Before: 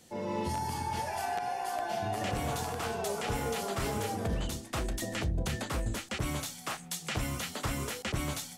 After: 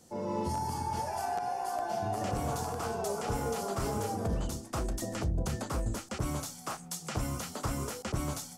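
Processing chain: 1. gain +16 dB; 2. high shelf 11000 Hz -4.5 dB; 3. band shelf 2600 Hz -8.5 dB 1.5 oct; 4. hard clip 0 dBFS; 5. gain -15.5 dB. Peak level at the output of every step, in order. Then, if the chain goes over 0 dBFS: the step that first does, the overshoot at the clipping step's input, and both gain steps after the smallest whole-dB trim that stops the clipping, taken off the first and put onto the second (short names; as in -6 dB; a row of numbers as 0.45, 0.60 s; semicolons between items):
-5.5, -6.0, -5.5, -5.5, -21.0 dBFS; no overload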